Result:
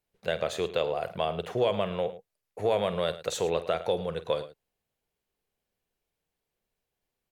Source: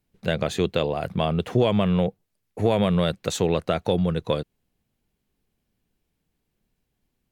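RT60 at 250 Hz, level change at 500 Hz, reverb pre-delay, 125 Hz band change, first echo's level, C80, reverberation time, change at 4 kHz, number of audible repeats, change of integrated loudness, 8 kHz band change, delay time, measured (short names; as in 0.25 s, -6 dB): none, -3.5 dB, none, -14.5 dB, -14.0 dB, none, none, -4.5 dB, 2, -6.0 dB, -4.5 dB, 48 ms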